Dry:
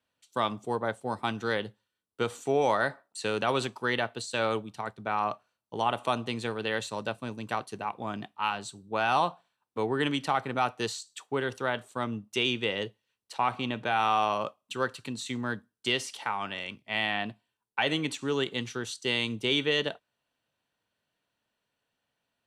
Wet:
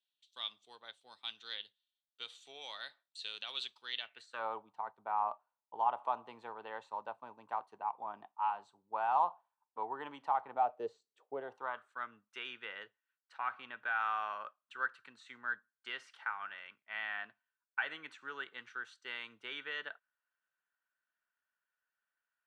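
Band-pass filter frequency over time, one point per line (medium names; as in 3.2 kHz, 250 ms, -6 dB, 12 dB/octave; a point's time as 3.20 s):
band-pass filter, Q 4.4
3.99 s 3.6 kHz
4.45 s 910 Hz
10.49 s 910 Hz
11.06 s 380 Hz
11.91 s 1.5 kHz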